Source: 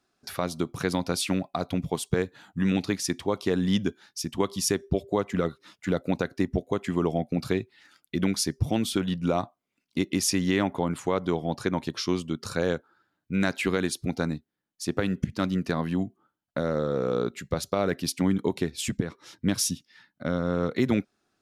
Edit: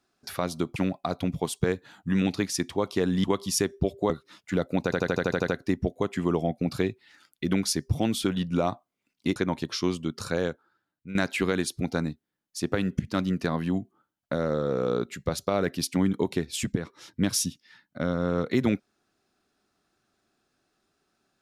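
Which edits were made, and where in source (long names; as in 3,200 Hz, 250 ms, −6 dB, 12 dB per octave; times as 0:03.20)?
0:00.76–0:01.26: remove
0:03.74–0:04.34: remove
0:05.20–0:05.45: remove
0:06.19: stutter 0.08 s, 9 plays
0:10.07–0:11.61: remove
0:12.48–0:13.40: fade out, to −12.5 dB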